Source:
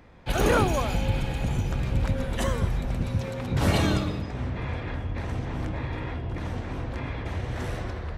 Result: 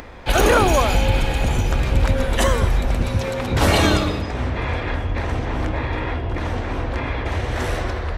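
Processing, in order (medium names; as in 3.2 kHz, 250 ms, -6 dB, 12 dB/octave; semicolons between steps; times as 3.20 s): 5.18–7.32 s: treble shelf 6 kHz -6 dB; upward compressor, threshold -41 dBFS; peaking EQ 150 Hz -9.5 dB 1.4 oct; loudness maximiser +16 dB; trim -5 dB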